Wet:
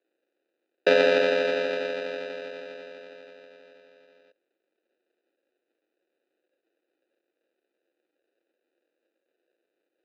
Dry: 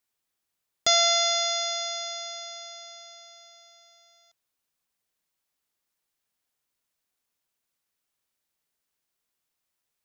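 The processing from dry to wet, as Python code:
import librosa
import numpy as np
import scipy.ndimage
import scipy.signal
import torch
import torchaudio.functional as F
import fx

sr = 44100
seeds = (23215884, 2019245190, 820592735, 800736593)

y = fx.sample_hold(x, sr, seeds[0], rate_hz=1100.0, jitter_pct=0)
y = fx.cabinet(y, sr, low_hz=310.0, low_slope=24, high_hz=4600.0, hz=(340.0, 520.0, 970.0, 1600.0, 2400.0, 3800.0), db=(9, 9, -8, 5, 9, 5))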